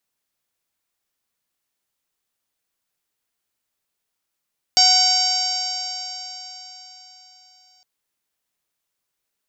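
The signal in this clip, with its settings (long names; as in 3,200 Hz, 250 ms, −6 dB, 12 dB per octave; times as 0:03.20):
stiff-string partials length 3.06 s, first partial 739 Hz, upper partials −13.5/−8.5/−9.5/−10/6/5/−1.5/−5 dB, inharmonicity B 0.0029, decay 4.14 s, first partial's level −19.5 dB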